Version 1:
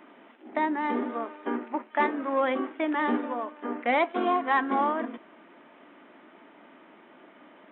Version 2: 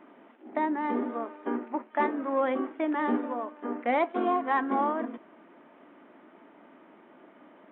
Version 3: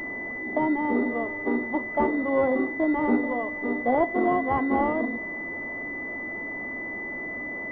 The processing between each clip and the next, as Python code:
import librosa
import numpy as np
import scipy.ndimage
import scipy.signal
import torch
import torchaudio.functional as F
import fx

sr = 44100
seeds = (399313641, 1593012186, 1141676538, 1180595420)

y1 = fx.high_shelf(x, sr, hz=2100.0, db=-11.0)
y2 = y1 + 0.5 * 10.0 ** (-39.0 / 20.0) * np.sign(y1)
y2 = fx.pwm(y2, sr, carrier_hz=2000.0)
y2 = F.gain(torch.from_numpy(y2), 4.5).numpy()